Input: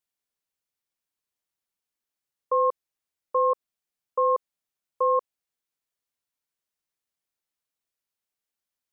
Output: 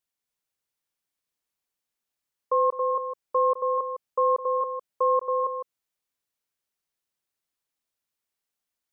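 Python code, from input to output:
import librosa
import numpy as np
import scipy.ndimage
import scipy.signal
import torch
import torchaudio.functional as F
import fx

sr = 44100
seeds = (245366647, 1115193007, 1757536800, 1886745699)

y = fx.echo_multitap(x, sr, ms=(209, 276, 432), db=(-14.5, -4.0, -10.5))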